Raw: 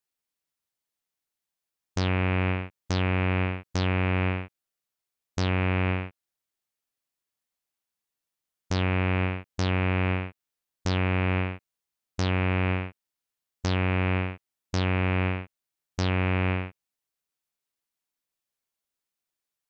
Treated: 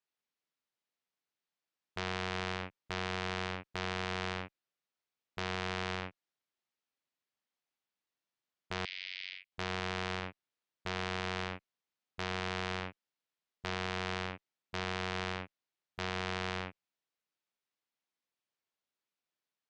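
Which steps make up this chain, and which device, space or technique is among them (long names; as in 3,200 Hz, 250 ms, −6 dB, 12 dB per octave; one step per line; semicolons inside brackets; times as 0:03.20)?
valve radio (band-pass filter 130–4,600 Hz; tube saturation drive 20 dB, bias 0.4; saturating transformer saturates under 2,000 Hz)
0:08.85–0:09.52: elliptic band-pass filter 2,100–5,000 Hz, stop band 80 dB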